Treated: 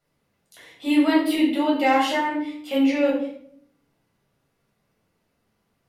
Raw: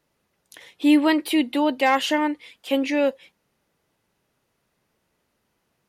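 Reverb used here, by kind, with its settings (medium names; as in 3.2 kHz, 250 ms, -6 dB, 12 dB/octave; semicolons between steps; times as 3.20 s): simulated room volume 1000 m³, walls furnished, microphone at 7.1 m; trim -9 dB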